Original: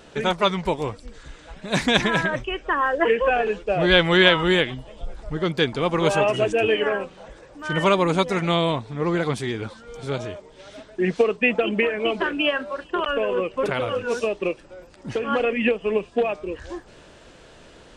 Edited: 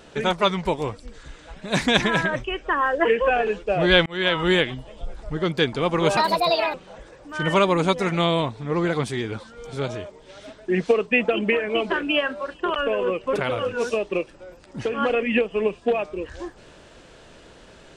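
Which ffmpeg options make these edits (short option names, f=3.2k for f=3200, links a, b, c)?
-filter_complex "[0:a]asplit=4[a][b][c][d];[a]atrim=end=4.06,asetpts=PTS-STARTPTS,afade=t=out:st=4.056:d=0.004:c=hsin[e];[b]atrim=start=4.06:end=6.174,asetpts=PTS-STARTPTS,afade=t=in:d=0.43[f];[c]atrim=start=6.17:end=7.04,asetpts=PTS-STARTPTS,asetrate=67473,aresample=44100,atrim=end_sample=25076,asetpts=PTS-STARTPTS[g];[d]atrim=start=7.036[h];[e][f]concat=n=2:v=0:a=1[i];[i][g]acrossfade=d=0.004:c1=hsin:c2=hsin[j];[j][h]acrossfade=d=0.004:c1=hsin:c2=hsin"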